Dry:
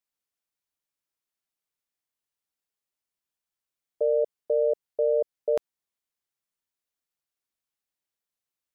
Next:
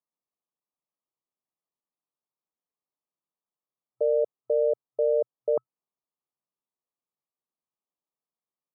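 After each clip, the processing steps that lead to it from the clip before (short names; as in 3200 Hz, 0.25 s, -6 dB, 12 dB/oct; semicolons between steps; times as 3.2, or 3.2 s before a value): FFT band-pass 120–1300 Hz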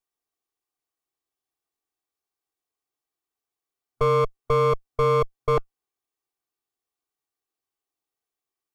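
minimum comb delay 2.6 ms; gain +6 dB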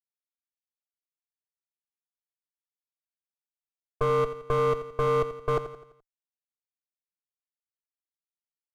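median filter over 9 samples; power-law curve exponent 1.4; feedback echo 85 ms, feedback 47%, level -12 dB; gain -2.5 dB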